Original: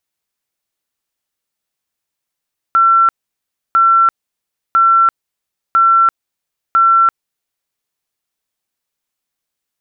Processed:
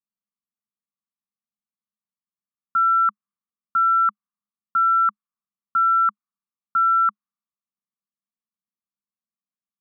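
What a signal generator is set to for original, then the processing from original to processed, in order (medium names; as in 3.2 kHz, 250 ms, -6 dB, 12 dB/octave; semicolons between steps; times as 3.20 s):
tone bursts 1.35 kHz, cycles 457, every 1.00 s, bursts 5, -6.5 dBFS
level-controlled noise filter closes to 680 Hz, open at -10.5 dBFS; two resonant band-passes 490 Hz, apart 2.5 oct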